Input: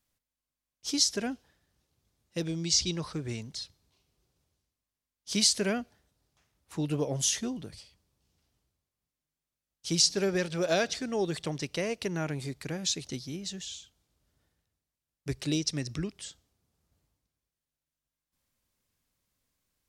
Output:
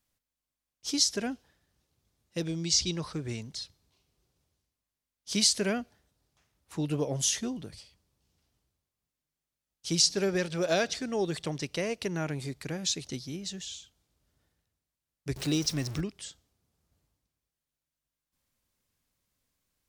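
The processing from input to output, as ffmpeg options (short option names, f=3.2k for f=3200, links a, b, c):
-filter_complex "[0:a]asettb=1/sr,asplit=3[a][b][c];[a]atrim=end=15.364[d];[b]atrim=start=15.36:end=16.01,asetpts=PTS-STARTPTS,afade=t=in:d=0.004:c=qsin,afade=t=out:st=0.646:d=0.004:c=qsin,aeval=exprs='val(0)+0.5*0.0133*sgn(val(0))':c=same[e];[c]atrim=start=16.006[f];[d][e]acrossfade=d=0.004:c1=hsin:c2=qsin[g];[g][f]acrossfade=d=0.004:c1=qsin:c2=hsin"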